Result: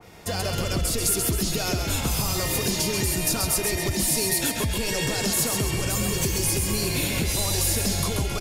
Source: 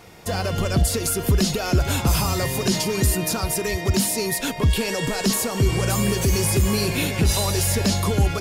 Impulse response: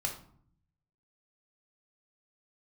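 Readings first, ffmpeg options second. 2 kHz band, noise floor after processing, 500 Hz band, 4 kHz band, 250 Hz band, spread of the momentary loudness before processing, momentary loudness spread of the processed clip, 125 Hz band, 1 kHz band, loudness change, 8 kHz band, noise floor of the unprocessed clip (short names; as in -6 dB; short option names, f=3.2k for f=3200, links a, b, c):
-2.0 dB, -29 dBFS, -4.5 dB, -0.5 dB, -5.0 dB, 3 LU, 4 LU, -6.0 dB, -4.5 dB, -2.0 dB, +1.0 dB, -30 dBFS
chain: -filter_complex "[0:a]acrossover=split=270|840|6400[a][b][c][d];[c]alimiter=limit=-23dB:level=0:latency=1[e];[a][b][e][d]amix=inputs=4:normalize=0,acompressor=threshold=-22dB:ratio=6,asplit=7[f][g][h][i][j][k][l];[g]adelay=134,afreqshift=-45,volume=-5dB[m];[h]adelay=268,afreqshift=-90,volume=-11.2dB[n];[i]adelay=402,afreqshift=-135,volume=-17.4dB[o];[j]adelay=536,afreqshift=-180,volume=-23.6dB[p];[k]adelay=670,afreqshift=-225,volume=-29.8dB[q];[l]adelay=804,afreqshift=-270,volume=-36dB[r];[f][m][n][o][p][q][r]amix=inputs=7:normalize=0,adynamicequalizer=threshold=0.00501:dfrequency=2100:dqfactor=0.7:tfrequency=2100:tqfactor=0.7:attack=5:release=100:ratio=0.375:range=3:mode=boostabove:tftype=highshelf,volume=-2dB"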